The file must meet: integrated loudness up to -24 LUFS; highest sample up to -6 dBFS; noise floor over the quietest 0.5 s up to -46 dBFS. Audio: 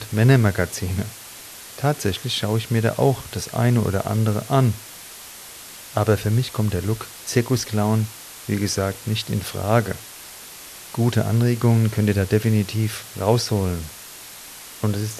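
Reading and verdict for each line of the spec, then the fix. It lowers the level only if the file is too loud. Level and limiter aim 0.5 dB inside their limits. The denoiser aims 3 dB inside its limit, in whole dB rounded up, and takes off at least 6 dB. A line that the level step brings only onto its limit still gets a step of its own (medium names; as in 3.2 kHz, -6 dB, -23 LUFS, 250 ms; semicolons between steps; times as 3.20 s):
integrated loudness -21.5 LUFS: fail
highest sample -4.0 dBFS: fail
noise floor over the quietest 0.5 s -40 dBFS: fail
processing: noise reduction 6 dB, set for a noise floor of -40 dBFS; trim -3 dB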